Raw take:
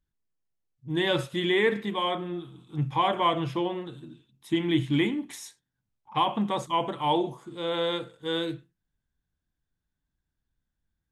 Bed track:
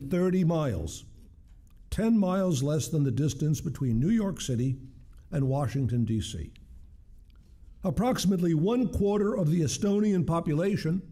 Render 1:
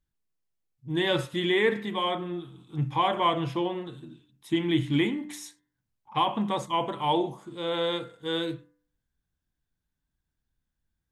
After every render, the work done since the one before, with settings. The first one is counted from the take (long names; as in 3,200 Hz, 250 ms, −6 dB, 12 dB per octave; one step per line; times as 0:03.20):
hum removal 99.2 Hz, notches 21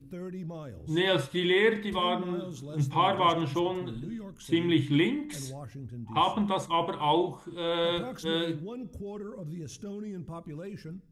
mix in bed track −13.5 dB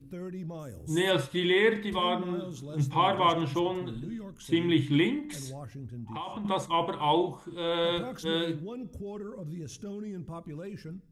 0:00.59–0:01.11: high shelf with overshoot 5,800 Hz +11.5 dB, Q 1.5
0:05.19–0:06.45: downward compressor, threshold −34 dBFS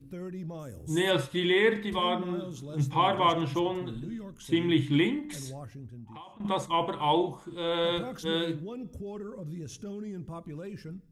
0:05.57–0:06.40: fade out, to −16 dB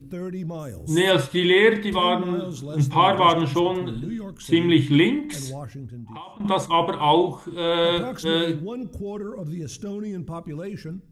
level +7.5 dB